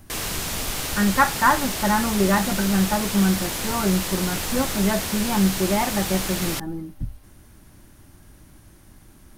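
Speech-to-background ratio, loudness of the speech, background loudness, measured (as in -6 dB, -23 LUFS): 3.5 dB, -23.0 LUFS, -26.5 LUFS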